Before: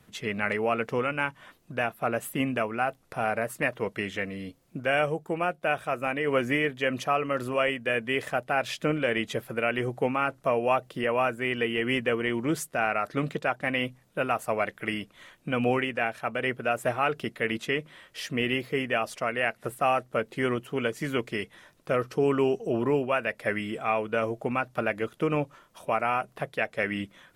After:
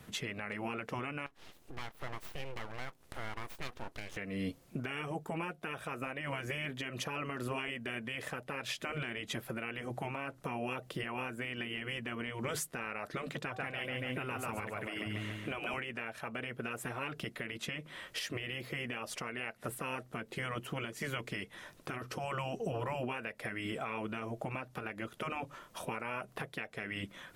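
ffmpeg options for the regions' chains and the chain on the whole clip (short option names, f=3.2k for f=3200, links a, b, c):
-filter_complex "[0:a]asettb=1/sr,asplit=3[a][b][c];[a]atrim=end=1.264[d];[b]atrim=start=1.26:end=4.17,asetpts=PTS-STARTPTS,afade=t=in:d=0.004:c=qsin,afade=t=out:st=2.906:d=0.004:c=qsin,aeval=exprs='abs(val(0))':c=same,acompressor=threshold=-53dB:ratio=2:attack=3.2:release=140:knee=1:detection=peak[e];[c]atrim=start=4.166[f];[d][e]acrossfade=d=0.004:c1=hsin:c2=qsin[g];[g][f]acrossfade=d=0.004:c1=qsin:c2=hsin,asettb=1/sr,asplit=3[h][i][j];[h]atrim=end=13.414[k];[i]atrim=start=13.41:end=15.74,asetpts=PTS-STARTPTS,afade=t=in:d=0.004:c=qsin,afade=t=out:st=2.326:d=0.004:c=qsin,equalizer=f=110:t=o:w=0.3:g=14,bandreject=f=380.8:t=h:w=4,bandreject=f=761.6:t=h:w=4,bandreject=f=1.1424k:t=h:w=4,aecho=1:1:141|282|423|564|705|846:0.501|0.236|0.111|0.052|0.0245|0.0115,atrim=end_sample=102753[l];[j]atrim=start=15.736[m];[k][l]acrossfade=d=0.004:c1=hsin:c2=qsin[n];[n][m]acrossfade=d=0.004:c1=qsin:c2=hsin,afftfilt=real='re*lt(hypot(re,im),0.2)':imag='im*lt(hypot(re,im),0.2)':win_size=1024:overlap=0.75,acompressor=threshold=-33dB:ratio=6,alimiter=level_in=7dB:limit=-24dB:level=0:latency=1:release=348,volume=-7dB,volume=4.5dB"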